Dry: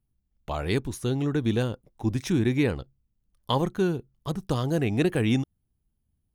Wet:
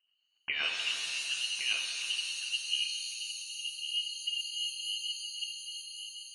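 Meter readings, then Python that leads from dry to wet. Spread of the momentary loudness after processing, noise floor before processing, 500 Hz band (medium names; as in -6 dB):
7 LU, -77 dBFS, under -30 dB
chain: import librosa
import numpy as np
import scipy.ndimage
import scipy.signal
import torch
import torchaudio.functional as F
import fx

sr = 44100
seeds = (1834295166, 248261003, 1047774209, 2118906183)

y = scipy.signal.sosfilt(scipy.signal.butter(2, 71.0, 'highpass', fs=sr, output='sos'), x)
y = fx.over_compress(y, sr, threshold_db=-31.0, ratio=-0.5)
y = fx.filter_sweep_lowpass(y, sr, from_hz=1900.0, to_hz=130.0, start_s=1.14, end_s=2.89, q=1.6)
y = fx.rotary_switch(y, sr, hz=7.5, then_hz=0.7, switch_at_s=0.66)
y = y + 10.0 ** (-8.0 / 20.0) * np.pad(y, (int(1111 * sr / 1000.0), 0))[:len(y)]
y = fx.freq_invert(y, sr, carrier_hz=3000)
y = fx.rev_shimmer(y, sr, seeds[0], rt60_s=2.3, semitones=7, shimmer_db=-2, drr_db=3.0)
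y = F.gain(torch.from_numpy(y), -4.5).numpy()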